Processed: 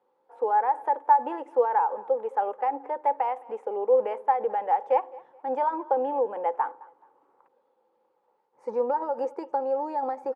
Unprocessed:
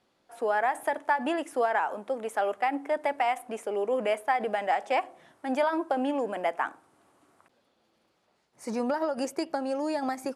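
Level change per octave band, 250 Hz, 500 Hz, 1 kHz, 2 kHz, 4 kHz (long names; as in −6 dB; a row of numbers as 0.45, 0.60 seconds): −8.0 dB, +2.5 dB, +4.5 dB, −10.0 dB, below −15 dB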